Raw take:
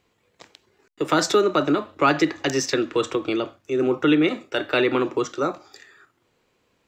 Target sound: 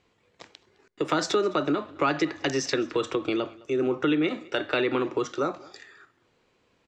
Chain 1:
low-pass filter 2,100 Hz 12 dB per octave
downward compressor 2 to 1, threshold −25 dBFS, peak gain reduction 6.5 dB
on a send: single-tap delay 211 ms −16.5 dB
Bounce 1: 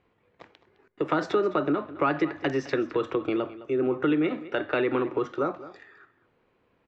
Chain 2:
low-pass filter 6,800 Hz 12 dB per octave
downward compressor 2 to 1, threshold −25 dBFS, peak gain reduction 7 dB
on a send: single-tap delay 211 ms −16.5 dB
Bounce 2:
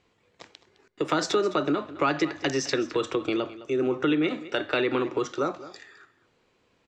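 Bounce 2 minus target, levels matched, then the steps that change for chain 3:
echo-to-direct +7 dB
change: single-tap delay 211 ms −23.5 dB

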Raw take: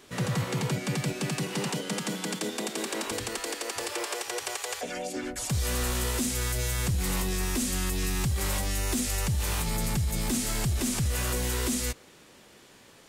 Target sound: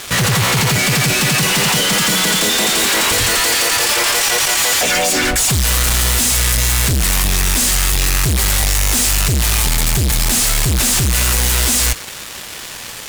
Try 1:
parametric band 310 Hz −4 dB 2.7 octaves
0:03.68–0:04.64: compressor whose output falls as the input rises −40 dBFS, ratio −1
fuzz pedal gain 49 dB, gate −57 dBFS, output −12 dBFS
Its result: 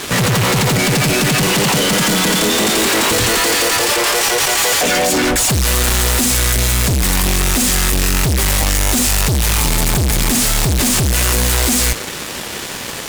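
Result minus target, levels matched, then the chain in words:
250 Hz band +5.0 dB
parametric band 310 Hz −14.5 dB 2.7 octaves
0:03.68–0:04.64: compressor whose output falls as the input rises −40 dBFS, ratio −1
fuzz pedal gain 49 dB, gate −57 dBFS, output −12 dBFS

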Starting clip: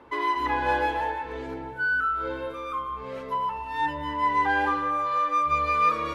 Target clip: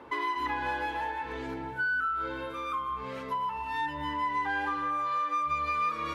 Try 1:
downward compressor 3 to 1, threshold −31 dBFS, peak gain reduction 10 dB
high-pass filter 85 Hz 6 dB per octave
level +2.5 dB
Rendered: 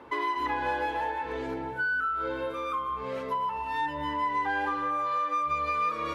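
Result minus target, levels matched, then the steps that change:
500 Hz band +4.5 dB
add after high-pass filter: dynamic equaliser 530 Hz, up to −7 dB, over −48 dBFS, Q 1.3

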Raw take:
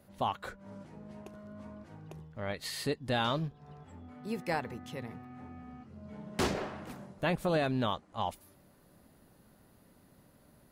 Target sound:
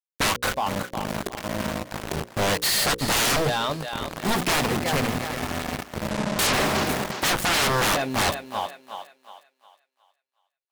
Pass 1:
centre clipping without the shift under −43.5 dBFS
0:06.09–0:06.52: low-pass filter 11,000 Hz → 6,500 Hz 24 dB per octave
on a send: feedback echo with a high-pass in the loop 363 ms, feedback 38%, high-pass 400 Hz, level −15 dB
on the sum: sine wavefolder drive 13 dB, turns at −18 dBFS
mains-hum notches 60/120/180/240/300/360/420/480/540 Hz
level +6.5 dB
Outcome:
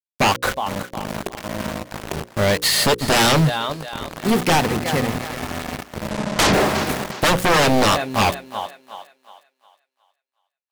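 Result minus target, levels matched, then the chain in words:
sine wavefolder: distortion −9 dB
centre clipping without the shift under −43.5 dBFS
0:06.09–0:06.52: low-pass filter 11,000 Hz → 6,500 Hz 24 dB per octave
on a send: feedback echo with a high-pass in the loop 363 ms, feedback 38%, high-pass 400 Hz, level −15 dB
on the sum: sine wavefolder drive 13 dB, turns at −24.5 dBFS
mains-hum notches 60/120/180/240/300/360/420/480/540 Hz
level +6.5 dB

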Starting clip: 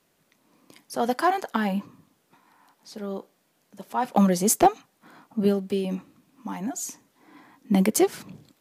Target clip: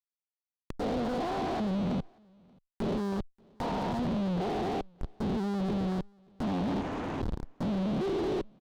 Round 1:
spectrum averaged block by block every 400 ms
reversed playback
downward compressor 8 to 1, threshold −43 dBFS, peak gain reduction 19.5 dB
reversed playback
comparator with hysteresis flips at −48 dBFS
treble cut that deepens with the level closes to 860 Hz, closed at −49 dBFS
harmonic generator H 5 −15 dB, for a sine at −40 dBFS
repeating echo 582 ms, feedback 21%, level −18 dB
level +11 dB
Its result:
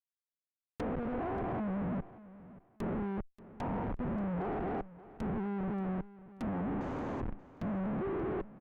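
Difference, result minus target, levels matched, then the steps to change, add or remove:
echo-to-direct +11.5 dB; downward compressor: peak gain reduction +7.5 dB
change: downward compressor 8 to 1, threshold −34.5 dBFS, peak gain reduction 12 dB
change: repeating echo 582 ms, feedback 21%, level −29.5 dB

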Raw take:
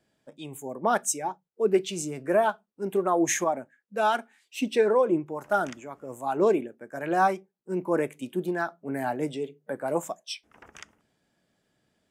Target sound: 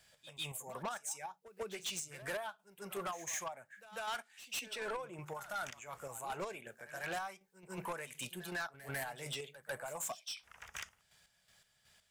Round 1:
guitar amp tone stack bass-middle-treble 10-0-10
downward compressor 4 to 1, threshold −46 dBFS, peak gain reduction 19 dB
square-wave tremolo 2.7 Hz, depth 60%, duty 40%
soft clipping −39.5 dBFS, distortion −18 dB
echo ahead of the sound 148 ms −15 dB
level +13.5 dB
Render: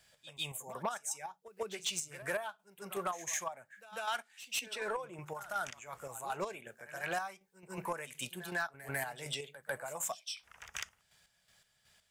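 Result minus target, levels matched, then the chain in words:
soft clipping: distortion −9 dB
guitar amp tone stack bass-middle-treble 10-0-10
downward compressor 4 to 1, threshold −46 dBFS, peak gain reduction 19 dB
square-wave tremolo 2.7 Hz, depth 60%, duty 40%
soft clipping −48.5 dBFS, distortion −9 dB
echo ahead of the sound 148 ms −15 dB
level +13.5 dB

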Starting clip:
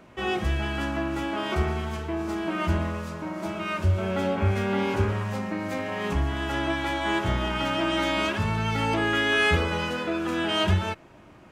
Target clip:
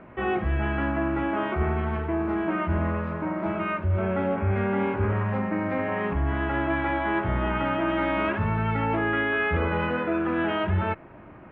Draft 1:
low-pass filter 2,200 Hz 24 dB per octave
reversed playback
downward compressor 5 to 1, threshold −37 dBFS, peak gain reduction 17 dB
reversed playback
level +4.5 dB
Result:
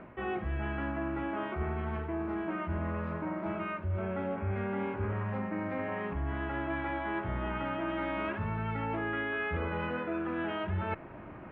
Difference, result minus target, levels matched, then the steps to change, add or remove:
downward compressor: peak gain reduction +9 dB
change: downward compressor 5 to 1, threshold −26 dBFS, peak gain reduction 8.5 dB

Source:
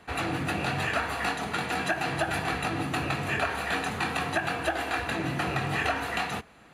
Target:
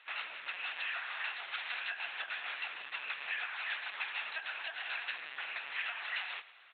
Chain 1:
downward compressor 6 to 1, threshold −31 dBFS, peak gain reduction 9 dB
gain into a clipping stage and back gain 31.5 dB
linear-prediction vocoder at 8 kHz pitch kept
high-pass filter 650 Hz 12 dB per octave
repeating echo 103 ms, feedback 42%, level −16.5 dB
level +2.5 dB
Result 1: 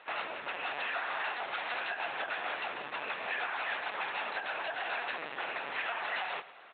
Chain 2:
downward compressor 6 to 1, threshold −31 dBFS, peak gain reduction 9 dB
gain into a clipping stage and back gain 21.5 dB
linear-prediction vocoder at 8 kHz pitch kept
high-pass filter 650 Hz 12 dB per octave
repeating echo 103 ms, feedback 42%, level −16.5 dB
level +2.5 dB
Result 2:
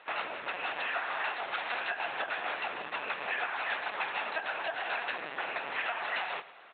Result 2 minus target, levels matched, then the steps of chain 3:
500 Hz band +13.0 dB
downward compressor 6 to 1, threshold −31 dBFS, peak gain reduction 9 dB
gain into a clipping stage and back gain 21.5 dB
linear-prediction vocoder at 8 kHz pitch kept
high-pass filter 2,000 Hz 12 dB per octave
repeating echo 103 ms, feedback 42%, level −16.5 dB
level +2.5 dB

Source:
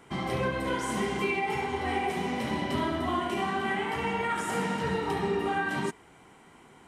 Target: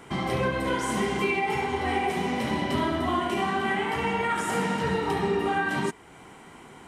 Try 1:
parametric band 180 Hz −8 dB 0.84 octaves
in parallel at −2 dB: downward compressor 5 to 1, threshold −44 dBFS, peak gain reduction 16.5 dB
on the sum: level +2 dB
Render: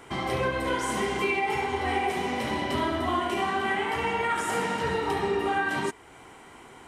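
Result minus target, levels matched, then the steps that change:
250 Hz band −2.5 dB
remove: parametric band 180 Hz −8 dB 0.84 octaves

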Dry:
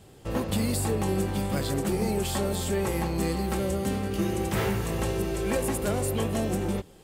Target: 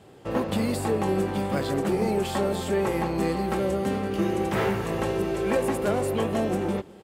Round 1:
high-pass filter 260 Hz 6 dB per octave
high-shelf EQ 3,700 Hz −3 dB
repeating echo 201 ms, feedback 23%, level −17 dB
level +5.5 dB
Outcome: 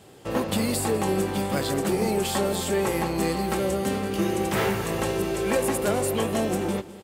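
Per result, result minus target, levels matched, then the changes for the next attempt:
8,000 Hz band +8.0 dB; echo-to-direct +7 dB
change: high-shelf EQ 3,700 Hz −13.5 dB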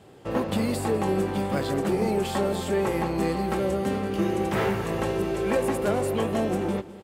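echo-to-direct +7 dB
change: repeating echo 201 ms, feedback 23%, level −24 dB

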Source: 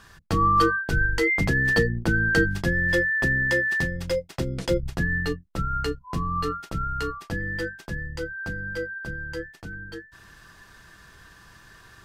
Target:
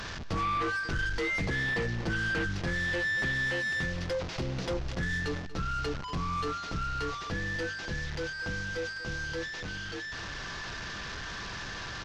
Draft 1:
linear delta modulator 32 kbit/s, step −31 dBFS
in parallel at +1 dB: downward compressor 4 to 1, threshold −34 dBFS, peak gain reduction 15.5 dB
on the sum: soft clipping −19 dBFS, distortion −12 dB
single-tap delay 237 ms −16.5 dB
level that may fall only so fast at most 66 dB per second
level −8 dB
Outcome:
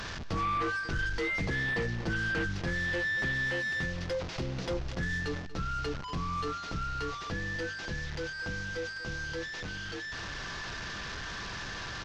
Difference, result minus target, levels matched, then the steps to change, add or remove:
downward compressor: peak gain reduction +6.5 dB
change: downward compressor 4 to 1, threshold −25 dBFS, peak gain reduction 8.5 dB

